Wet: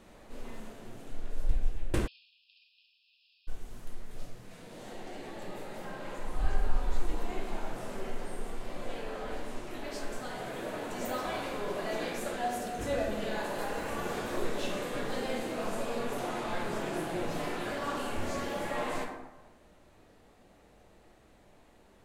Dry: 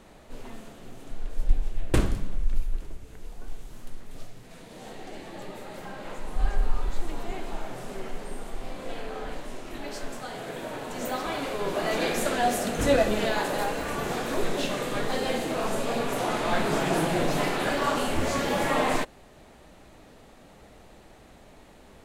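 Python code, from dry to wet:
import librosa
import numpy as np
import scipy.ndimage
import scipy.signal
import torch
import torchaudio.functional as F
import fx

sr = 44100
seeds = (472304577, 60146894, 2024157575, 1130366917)

y = fx.rev_plate(x, sr, seeds[0], rt60_s=1.1, hf_ratio=0.45, predelay_ms=0, drr_db=0.5)
y = fx.rider(y, sr, range_db=4, speed_s=0.5)
y = fx.brickwall_bandpass(y, sr, low_hz=2400.0, high_hz=5400.0, at=(2.06, 3.47), fade=0.02)
y = y * 10.0 ** (-9.0 / 20.0)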